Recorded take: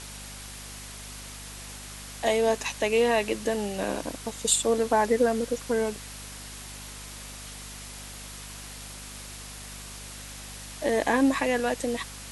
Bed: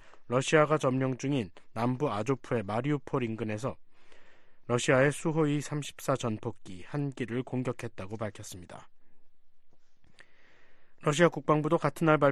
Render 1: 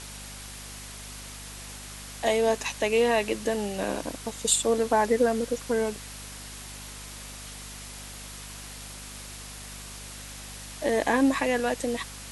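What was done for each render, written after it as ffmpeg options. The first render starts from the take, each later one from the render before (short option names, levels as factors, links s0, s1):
-af anull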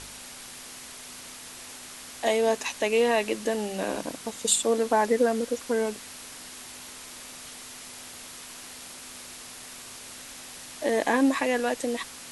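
-af "bandreject=f=50:t=h:w=4,bandreject=f=100:t=h:w=4,bandreject=f=150:t=h:w=4,bandreject=f=200:t=h:w=4"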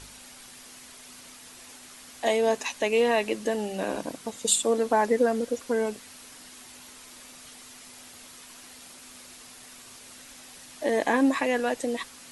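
-af "afftdn=nr=6:nf=-43"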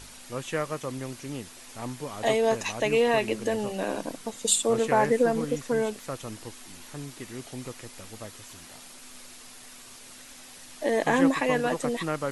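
-filter_complex "[1:a]volume=0.473[s0];[0:a][s0]amix=inputs=2:normalize=0"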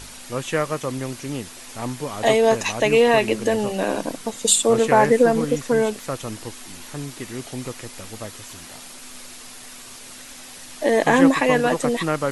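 -af "volume=2.24,alimiter=limit=0.708:level=0:latency=1"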